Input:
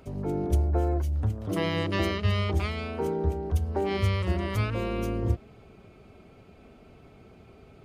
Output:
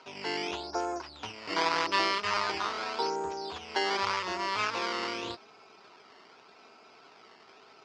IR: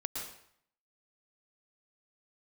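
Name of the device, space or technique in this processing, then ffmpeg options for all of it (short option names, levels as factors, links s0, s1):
circuit-bent sampling toy: -af "acrusher=samples=12:mix=1:aa=0.000001:lfo=1:lforange=12:lforate=0.85,highpass=550,equalizer=f=560:t=q:w=4:g=-6,equalizer=f=970:t=q:w=4:g=8,equalizer=f=1400:t=q:w=4:g=5,equalizer=f=2600:t=q:w=4:g=4,equalizer=f=4900:t=q:w=4:g=9,lowpass=f=5600:w=0.5412,lowpass=f=5600:w=1.3066,volume=1.26"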